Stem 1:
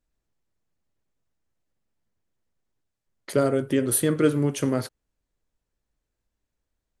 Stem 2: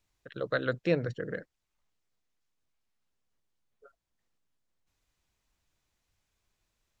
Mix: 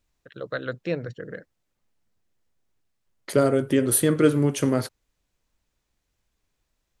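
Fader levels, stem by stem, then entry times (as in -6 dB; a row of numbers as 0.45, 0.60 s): +2.0, -0.5 dB; 0.00, 0.00 s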